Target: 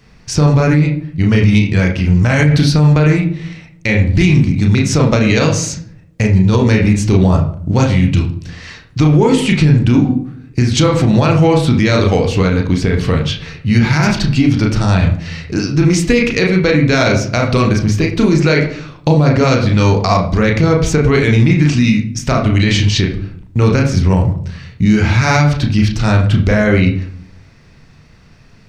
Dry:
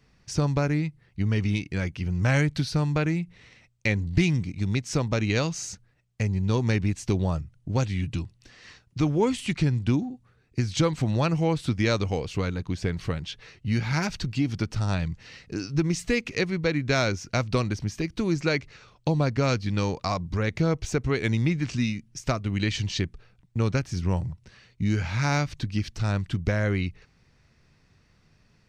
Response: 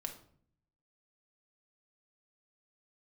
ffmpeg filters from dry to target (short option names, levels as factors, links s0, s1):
-filter_complex "[0:a]asplit=2[s0][s1];[1:a]atrim=start_sample=2205,lowpass=3600,adelay=33[s2];[s1][s2]afir=irnorm=-1:irlink=0,volume=1.12[s3];[s0][s3]amix=inputs=2:normalize=0,alimiter=level_in=5.31:limit=0.891:release=50:level=0:latency=1,volume=0.891"